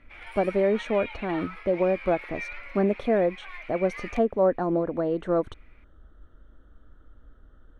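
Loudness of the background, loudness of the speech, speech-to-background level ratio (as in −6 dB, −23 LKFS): −39.5 LKFS, −26.5 LKFS, 13.0 dB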